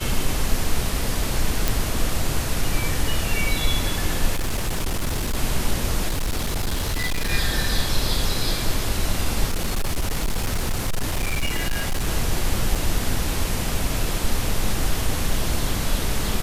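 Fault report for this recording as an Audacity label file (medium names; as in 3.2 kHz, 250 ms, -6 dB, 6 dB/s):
1.680000	1.680000	pop
4.350000	5.370000	clipped -19.5 dBFS
6.080000	7.320000	clipped -19.5 dBFS
9.470000	12.080000	clipped -18.5 dBFS
12.750000	12.760000	dropout 5.6 ms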